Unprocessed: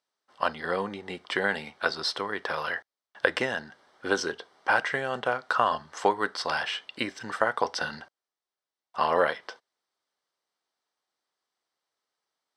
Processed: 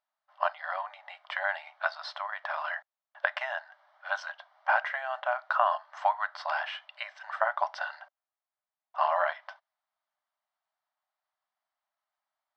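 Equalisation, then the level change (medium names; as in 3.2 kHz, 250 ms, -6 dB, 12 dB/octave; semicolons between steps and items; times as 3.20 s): brick-wall FIR high-pass 570 Hz; tape spacing loss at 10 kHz 33 dB; +2.5 dB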